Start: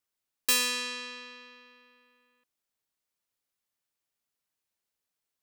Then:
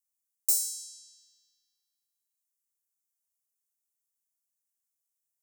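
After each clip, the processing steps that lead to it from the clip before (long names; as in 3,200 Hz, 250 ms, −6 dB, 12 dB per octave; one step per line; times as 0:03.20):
inverse Chebyshev high-pass filter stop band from 2,600 Hz, stop band 50 dB
level +3 dB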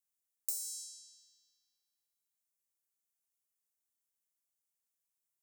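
downward compressor 6 to 1, threshold −31 dBFS, peak gain reduction 10.5 dB
level −3 dB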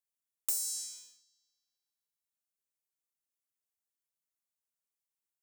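leveller curve on the samples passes 2
level −1.5 dB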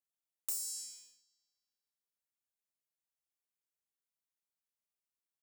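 double-tracking delay 32 ms −9 dB
level −5.5 dB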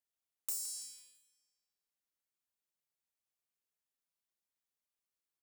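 repeating echo 166 ms, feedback 37%, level −14 dB
level −1 dB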